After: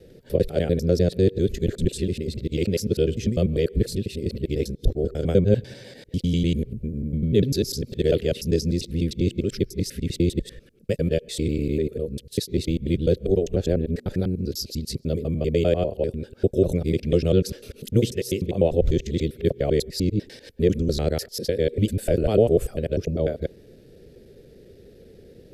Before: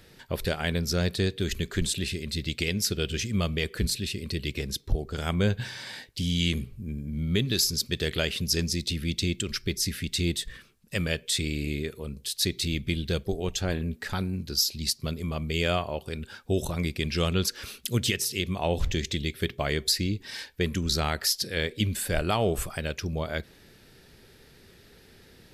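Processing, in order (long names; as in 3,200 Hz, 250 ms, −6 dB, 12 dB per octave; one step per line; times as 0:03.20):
reversed piece by piece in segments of 99 ms
low shelf with overshoot 710 Hz +11.5 dB, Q 3
level −6.5 dB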